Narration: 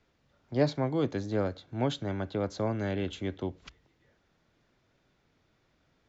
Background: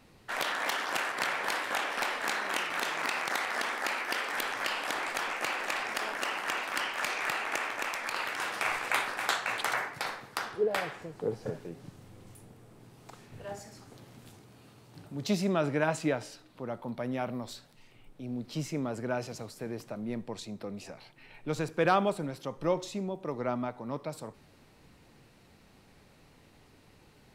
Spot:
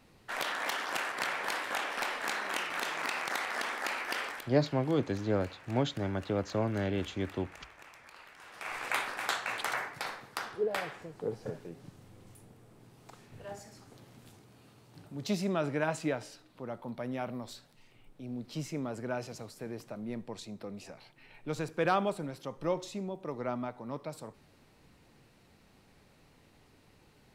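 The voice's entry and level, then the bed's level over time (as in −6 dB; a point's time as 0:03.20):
3.95 s, −0.5 dB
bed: 0:04.27 −2.5 dB
0:04.51 −19.5 dB
0:08.42 −19.5 dB
0:08.83 −3 dB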